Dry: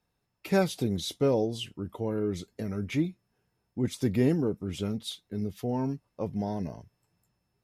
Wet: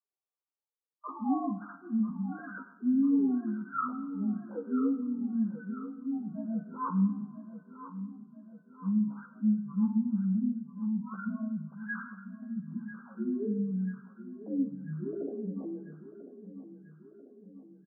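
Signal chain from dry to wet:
three sine waves on the formant tracks
gate on every frequency bin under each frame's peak −20 dB strong
noise gate with hold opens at −49 dBFS
comb filter 6.2 ms, depth 76%
downward compressor 3 to 1, threshold −27 dBFS, peak gain reduction 11.5 dB
single-sideband voice off tune +150 Hz 290–3,000 Hz
high-shelf EQ 2,400 Hz +8 dB
repeating echo 424 ms, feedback 56%, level −13 dB
on a send at −8 dB: convolution reverb, pre-delay 3 ms
on the sum: wrong playback speed 78 rpm record played at 33 rpm

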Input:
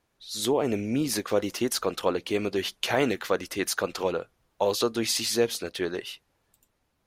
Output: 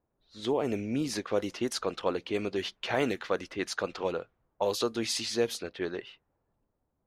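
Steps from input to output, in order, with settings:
low-pass that shuts in the quiet parts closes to 870 Hz, open at −21 dBFS
level −4 dB

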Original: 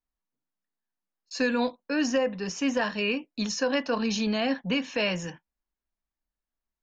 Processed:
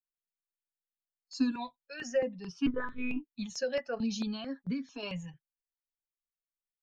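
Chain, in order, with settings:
spectral dynamics exaggerated over time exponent 1.5
0:01.51–0:02.02: parametric band 310 Hz −14.5 dB 1.8 octaves
0:02.66–0:03.24: one-pitch LPC vocoder at 8 kHz 250 Hz
comb filter 7.2 ms, depth 47%
0:03.95–0:05.03: downward compressor, threshold −30 dBFS, peak gain reduction 8 dB
dynamic equaliser 230 Hz, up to +7 dB, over −43 dBFS, Q 1.8
step-sequenced phaser 4.5 Hz 270–2,800 Hz
level −3.5 dB

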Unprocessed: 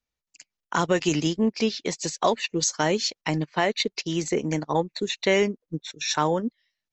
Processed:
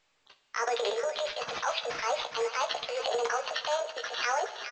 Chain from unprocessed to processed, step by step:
gliding playback speed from 131% → 163%
Butterworth low-pass 6,200 Hz 36 dB per octave
treble cut that deepens with the level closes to 2,200 Hz, closed at −22 dBFS
Butterworth high-pass 460 Hz 96 dB per octave
parametric band 600 Hz −4 dB 0.8 octaves
downward compressor 3 to 1, threshold −30 dBFS, peak gain reduction 9 dB
transient designer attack −8 dB, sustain +11 dB
double-tracking delay 15 ms −6.5 dB
on a send: delay with a high-pass on its return 417 ms, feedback 48%, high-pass 1,500 Hz, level −7 dB
on the sum: rectangular room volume 530 cubic metres, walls mixed, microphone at 0.42 metres
bad sample-rate conversion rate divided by 6×, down none, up hold
level +2.5 dB
A-law companding 128 kbit/s 16,000 Hz

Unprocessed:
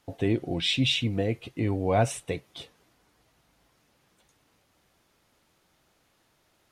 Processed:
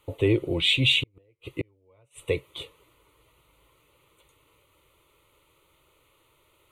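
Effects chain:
0:00.99–0:02.26: gate with flip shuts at −20 dBFS, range −40 dB
phaser with its sweep stopped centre 1,100 Hz, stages 8
level +7 dB

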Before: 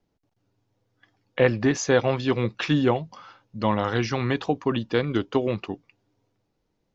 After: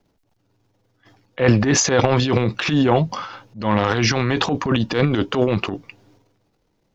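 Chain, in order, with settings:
transient designer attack −10 dB, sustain +11 dB
in parallel at −2 dB: downward compressor, threshold −22 dBFS, peak gain reduction 9 dB
on the sum: level +1.5 dB

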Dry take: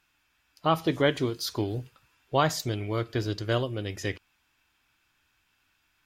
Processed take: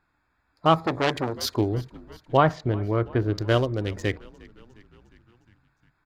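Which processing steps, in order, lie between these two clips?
adaptive Wiener filter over 15 samples
0:02.37–0:03.35: low-pass filter 2,000 Hz 12 dB per octave
echo with shifted repeats 356 ms, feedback 64%, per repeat −47 Hz, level −23 dB
0:00.80–0:01.44: saturating transformer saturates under 2,100 Hz
level +5.5 dB

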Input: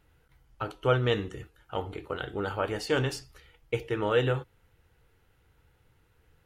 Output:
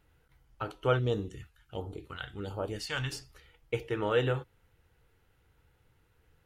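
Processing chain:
0:00.99–0:03.12: all-pass phaser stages 2, 1.4 Hz, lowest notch 340–2,100 Hz
level −2.5 dB

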